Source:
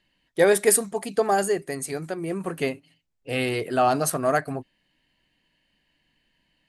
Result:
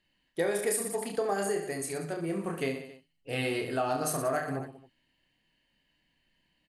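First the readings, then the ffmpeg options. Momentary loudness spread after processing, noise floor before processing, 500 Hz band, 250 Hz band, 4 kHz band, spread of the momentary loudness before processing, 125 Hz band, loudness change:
10 LU, −72 dBFS, −8.0 dB, −6.0 dB, −6.5 dB, 12 LU, −5.0 dB, −8.0 dB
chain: -af "aecho=1:1:30|69|119.7|185.6|271.3:0.631|0.398|0.251|0.158|0.1,acompressor=threshold=-20dB:ratio=5,volume=-6dB"

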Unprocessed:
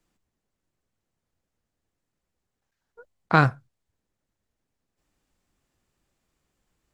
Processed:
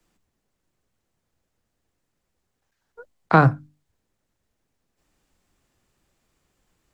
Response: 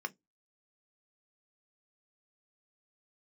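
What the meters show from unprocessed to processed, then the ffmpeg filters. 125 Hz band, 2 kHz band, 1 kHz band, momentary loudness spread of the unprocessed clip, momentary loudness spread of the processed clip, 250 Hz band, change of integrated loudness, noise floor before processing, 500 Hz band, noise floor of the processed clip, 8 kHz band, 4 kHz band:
+4.5 dB, 0.0 dB, +3.5 dB, 4 LU, 3 LU, +4.5 dB, +3.5 dB, −83 dBFS, +5.5 dB, −78 dBFS, can't be measured, −4.0 dB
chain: -filter_complex "[0:a]bandreject=frequency=50:width_type=h:width=6,bandreject=frequency=100:width_type=h:width=6,bandreject=frequency=150:width_type=h:width=6,bandreject=frequency=200:width_type=h:width=6,bandreject=frequency=250:width_type=h:width=6,bandreject=frequency=300:width_type=h:width=6,acrossover=split=170|430|1300[link_01][link_02][link_03][link_04];[link_04]acompressor=threshold=-33dB:ratio=6[link_05];[link_01][link_02][link_03][link_05]amix=inputs=4:normalize=0,volume=5.5dB"

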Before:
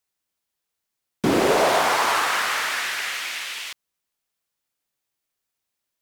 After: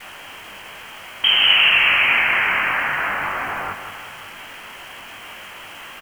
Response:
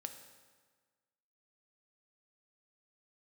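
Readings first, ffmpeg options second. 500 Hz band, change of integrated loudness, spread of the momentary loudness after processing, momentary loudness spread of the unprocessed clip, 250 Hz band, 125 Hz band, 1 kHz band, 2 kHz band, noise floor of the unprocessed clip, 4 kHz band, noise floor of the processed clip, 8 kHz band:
−10.0 dB, +6.0 dB, 24 LU, 11 LU, −12.0 dB, −4.5 dB, −1.0 dB, +9.0 dB, −82 dBFS, +11.5 dB, −38 dBFS, below −10 dB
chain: -filter_complex "[0:a]aeval=exprs='val(0)+0.5*0.0282*sgn(val(0))':channel_layout=same,highpass=110,lowpass=frequency=2900:width_type=q:width=0.5098,lowpass=frequency=2900:width_type=q:width=0.6013,lowpass=frequency=2900:width_type=q:width=0.9,lowpass=frequency=2900:width_type=q:width=2.563,afreqshift=-3400,asplit=2[link_01][link_02];[link_02]adelay=21,volume=-5.5dB[link_03];[link_01][link_03]amix=inputs=2:normalize=0,aecho=1:1:182|364|546|728|910|1092:0.266|0.152|0.0864|0.0493|0.0281|0.016,asplit=2[link_04][link_05];[link_05]acompressor=threshold=-34dB:ratio=6,volume=-0.5dB[link_06];[link_04][link_06]amix=inputs=2:normalize=0,adynamicequalizer=threshold=0.00355:dfrequency=450:dqfactor=1.5:tfrequency=450:tqfactor=1.5:attack=5:release=100:ratio=0.375:range=2.5:mode=cutabove:tftype=bell,acrusher=bits=8:dc=4:mix=0:aa=0.000001,volume=1.5dB"

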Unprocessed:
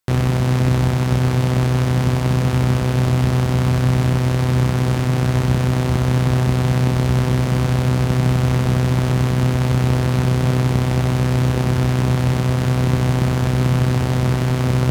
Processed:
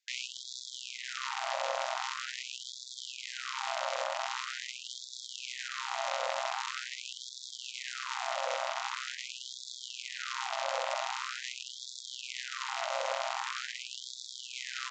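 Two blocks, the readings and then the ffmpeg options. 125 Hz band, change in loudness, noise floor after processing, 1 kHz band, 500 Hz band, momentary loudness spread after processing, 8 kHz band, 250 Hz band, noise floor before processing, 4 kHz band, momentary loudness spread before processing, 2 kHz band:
below −40 dB, −19.0 dB, −47 dBFS, −9.0 dB, −15.5 dB, 8 LU, −7.5 dB, below −40 dB, −20 dBFS, −5.5 dB, 1 LU, −8.5 dB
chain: -filter_complex "[0:a]equalizer=frequency=2200:width=1.5:gain=2.5,areverse,acompressor=mode=upward:threshold=-23dB:ratio=2.5,areverse,acrossover=split=1800[link_01][link_02];[link_01]adelay=180[link_03];[link_03][link_02]amix=inputs=2:normalize=0,afreqshift=41,aresample=16000,asoftclip=type=tanh:threshold=-17.5dB,aresample=44100,afftfilt=real='re*gte(b*sr/1024,510*pow(3400/510,0.5+0.5*sin(2*PI*0.44*pts/sr)))':imag='im*gte(b*sr/1024,510*pow(3400/510,0.5+0.5*sin(2*PI*0.44*pts/sr)))':win_size=1024:overlap=0.75,volume=-1.5dB"

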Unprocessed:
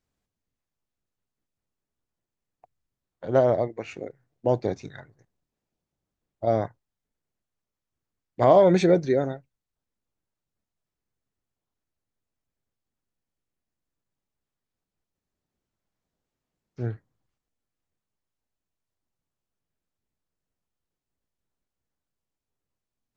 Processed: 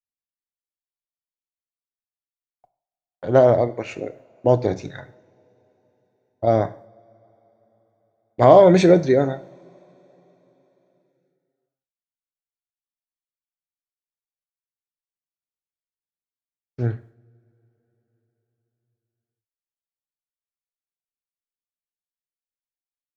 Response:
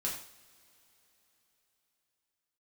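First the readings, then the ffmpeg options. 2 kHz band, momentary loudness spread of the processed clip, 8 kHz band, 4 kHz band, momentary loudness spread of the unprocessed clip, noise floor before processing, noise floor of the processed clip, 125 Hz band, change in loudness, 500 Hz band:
+6.0 dB, 22 LU, can't be measured, +6.0 dB, 20 LU, below −85 dBFS, below −85 dBFS, +6.5 dB, +5.5 dB, +5.5 dB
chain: -filter_complex "[0:a]agate=range=-33dB:threshold=-48dB:ratio=3:detection=peak,asplit=2[link_01][link_02];[1:a]atrim=start_sample=2205[link_03];[link_02][link_03]afir=irnorm=-1:irlink=0,volume=-11.5dB[link_04];[link_01][link_04]amix=inputs=2:normalize=0,volume=4dB"

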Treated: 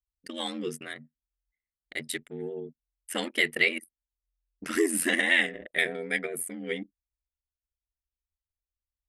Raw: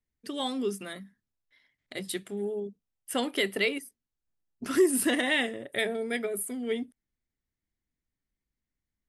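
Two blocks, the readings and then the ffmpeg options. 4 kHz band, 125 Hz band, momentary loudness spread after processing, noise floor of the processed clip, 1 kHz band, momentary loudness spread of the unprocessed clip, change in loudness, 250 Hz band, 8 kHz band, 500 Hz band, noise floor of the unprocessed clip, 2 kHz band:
+1.0 dB, can't be measured, 18 LU, below −85 dBFS, −3.0 dB, 16 LU, +1.5 dB, −3.5 dB, +0.5 dB, −3.5 dB, below −85 dBFS, +5.5 dB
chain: -af "anlmdn=0.1,aeval=exprs='val(0)*sin(2*PI*43*n/s)':channel_layout=same,equalizer=frequency=125:width_type=o:width=1:gain=-4,equalizer=frequency=1000:width_type=o:width=1:gain=-3,equalizer=frequency=2000:width_type=o:width=1:gain=10,equalizer=frequency=8000:width_type=o:width=1:gain=4"

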